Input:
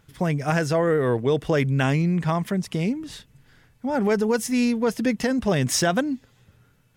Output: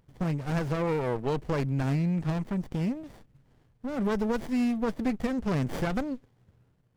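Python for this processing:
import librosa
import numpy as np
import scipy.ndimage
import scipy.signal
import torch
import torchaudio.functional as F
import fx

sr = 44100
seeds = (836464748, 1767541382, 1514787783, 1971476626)

y = fx.running_max(x, sr, window=33)
y = F.gain(torch.from_numpy(y), -5.5).numpy()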